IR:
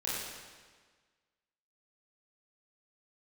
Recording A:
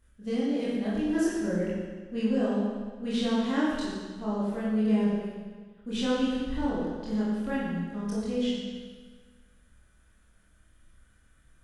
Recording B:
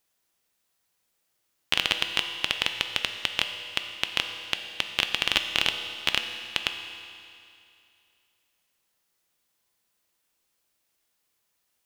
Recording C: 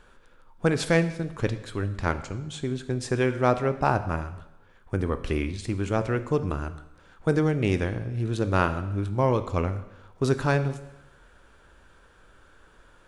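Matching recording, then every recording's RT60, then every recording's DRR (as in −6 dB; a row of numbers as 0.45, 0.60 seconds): A; 1.5, 2.5, 0.90 seconds; −8.5, 5.5, 10.5 decibels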